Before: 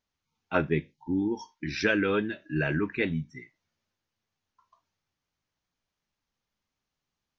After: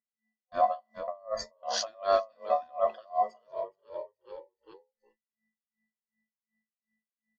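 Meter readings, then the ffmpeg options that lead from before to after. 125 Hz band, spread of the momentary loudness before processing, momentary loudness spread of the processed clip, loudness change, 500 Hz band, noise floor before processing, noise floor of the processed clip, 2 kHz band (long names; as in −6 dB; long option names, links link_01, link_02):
below −30 dB, 10 LU, 15 LU, −2.5 dB, +1.0 dB, below −85 dBFS, below −85 dBFS, −16.5 dB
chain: -filter_complex "[0:a]asuperstop=centerf=1200:order=4:qfactor=2.3,aeval=exprs='val(0)+0.00447*sin(2*PI*1100*n/s)':channel_layout=same,bass=frequency=250:gain=12,treble=frequency=4000:gain=11,agate=range=-34dB:threshold=-41dB:ratio=16:detection=peak,aeval=exprs='val(0)*sin(2*PI*880*n/s)':channel_layout=same,superequalizer=7b=0.282:8b=3.55:9b=0.708:12b=0.562:14b=2,alimiter=limit=-9.5dB:level=0:latency=1:release=12,asplit=5[link_01][link_02][link_03][link_04][link_05];[link_02]adelay=422,afreqshift=-52,volume=-20dB[link_06];[link_03]adelay=844,afreqshift=-104,volume=-25.5dB[link_07];[link_04]adelay=1266,afreqshift=-156,volume=-31dB[link_08];[link_05]adelay=1688,afreqshift=-208,volume=-36.5dB[link_09];[link_01][link_06][link_07][link_08][link_09]amix=inputs=5:normalize=0,acompressor=threshold=-39dB:ratio=1.5,aeval=exprs='val(0)*pow(10,-35*(0.5-0.5*cos(2*PI*2.7*n/s))/20)':channel_layout=same,volume=7dB"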